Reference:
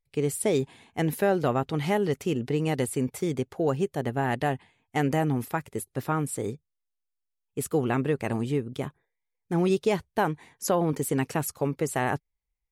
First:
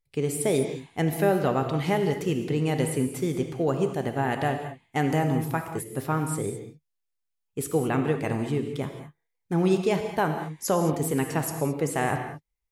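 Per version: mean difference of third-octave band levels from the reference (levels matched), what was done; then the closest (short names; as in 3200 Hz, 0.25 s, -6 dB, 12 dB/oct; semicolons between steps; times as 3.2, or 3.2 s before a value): 5.0 dB: non-linear reverb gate 0.24 s flat, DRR 5.5 dB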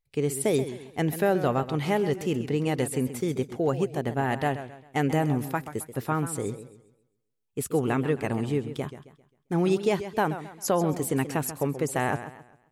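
3.5 dB: warbling echo 0.133 s, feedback 36%, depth 130 cents, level -12 dB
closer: second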